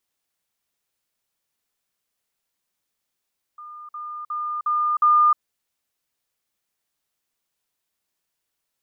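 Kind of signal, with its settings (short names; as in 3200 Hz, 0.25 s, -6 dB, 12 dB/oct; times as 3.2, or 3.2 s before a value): level ladder 1210 Hz -36.5 dBFS, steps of 6 dB, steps 5, 0.31 s 0.05 s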